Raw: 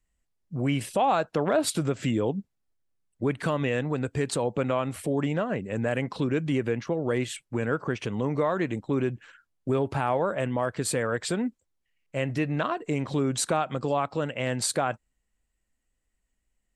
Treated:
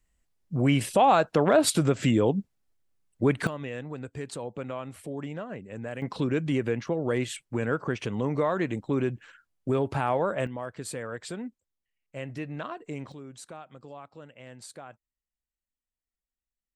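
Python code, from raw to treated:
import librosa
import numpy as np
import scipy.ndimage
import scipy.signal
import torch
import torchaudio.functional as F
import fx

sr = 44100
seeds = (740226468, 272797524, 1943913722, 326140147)

y = fx.gain(x, sr, db=fx.steps((0.0, 3.5), (3.47, -9.0), (6.02, -0.5), (10.47, -8.5), (13.12, -18.0)))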